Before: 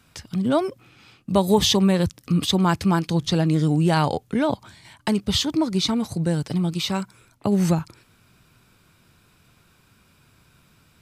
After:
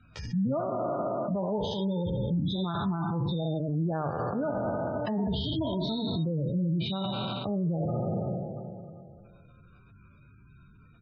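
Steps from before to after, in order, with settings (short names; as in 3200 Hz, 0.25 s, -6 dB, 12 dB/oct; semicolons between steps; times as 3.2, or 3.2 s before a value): spectral trails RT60 2.50 s; notch 2000 Hz, Q 23; spectral gate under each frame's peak -15 dB strong; high shelf 4300 Hz -10 dB; comb 1.6 ms, depth 36%; de-hum 77.83 Hz, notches 26; compressor, threshold -19 dBFS, peak gain reduction 7.5 dB; limiter -22.5 dBFS, peak gain reduction 11 dB; air absorption 99 m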